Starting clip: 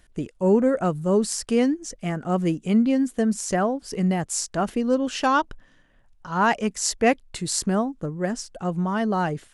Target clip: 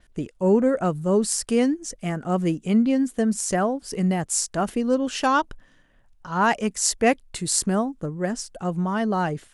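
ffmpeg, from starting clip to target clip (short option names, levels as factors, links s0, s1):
-af "adynamicequalizer=threshold=0.00562:dfrequency=9800:dqfactor=1.3:tfrequency=9800:tqfactor=1.3:attack=5:release=100:ratio=0.375:range=3:mode=boostabove:tftype=bell"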